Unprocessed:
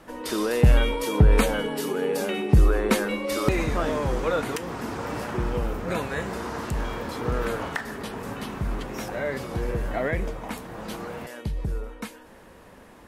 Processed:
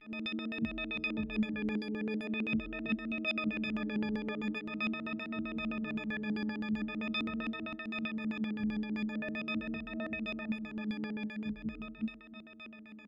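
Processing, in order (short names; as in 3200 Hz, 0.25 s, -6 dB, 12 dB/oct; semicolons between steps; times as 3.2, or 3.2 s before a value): frequency quantiser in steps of 6 st; HPF 46 Hz; vibrato 0.43 Hz 48 cents; graphic EQ 125/250/500/1000/4000/8000 Hz -4/+9/-10/-11/+9/-12 dB; compressor 3:1, threshold -28 dBFS, peak gain reduction 13 dB; low shelf 75 Hz -10 dB; resonator 210 Hz, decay 0.15 s, harmonics all, mix 90%; echo 0.335 s -10 dB; on a send at -16.5 dB: reverb RT60 1.2 s, pre-delay 4 ms; on the sum: LFO low-pass square 7.7 Hz 290–2400 Hz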